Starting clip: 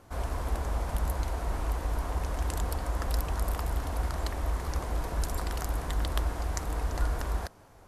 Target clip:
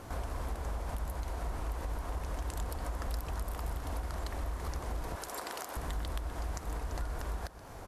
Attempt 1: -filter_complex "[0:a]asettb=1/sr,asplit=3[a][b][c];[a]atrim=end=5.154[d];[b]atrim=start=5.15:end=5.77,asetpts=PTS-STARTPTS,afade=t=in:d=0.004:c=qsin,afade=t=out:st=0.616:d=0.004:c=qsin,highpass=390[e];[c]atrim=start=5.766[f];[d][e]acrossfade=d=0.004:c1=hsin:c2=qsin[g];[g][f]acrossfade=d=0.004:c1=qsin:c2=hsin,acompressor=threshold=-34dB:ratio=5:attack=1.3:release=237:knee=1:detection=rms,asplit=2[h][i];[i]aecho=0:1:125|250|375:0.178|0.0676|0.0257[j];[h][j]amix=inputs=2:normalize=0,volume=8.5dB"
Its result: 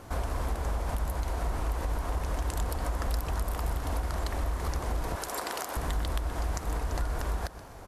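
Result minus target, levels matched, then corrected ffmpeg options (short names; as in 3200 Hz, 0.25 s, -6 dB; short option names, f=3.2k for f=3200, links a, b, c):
compressor: peak gain reduction -6 dB
-filter_complex "[0:a]asettb=1/sr,asplit=3[a][b][c];[a]atrim=end=5.154[d];[b]atrim=start=5.15:end=5.77,asetpts=PTS-STARTPTS,afade=t=in:d=0.004:c=qsin,afade=t=out:st=0.616:d=0.004:c=qsin,highpass=390[e];[c]atrim=start=5.766[f];[d][e]acrossfade=d=0.004:c1=hsin:c2=qsin[g];[g][f]acrossfade=d=0.004:c1=qsin:c2=hsin,acompressor=threshold=-41.5dB:ratio=5:attack=1.3:release=237:knee=1:detection=rms,asplit=2[h][i];[i]aecho=0:1:125|250|375:0.178|0.0676|0.0257[j];[h][j]amix=inputs=2:normalize=0,volume=8.5dB"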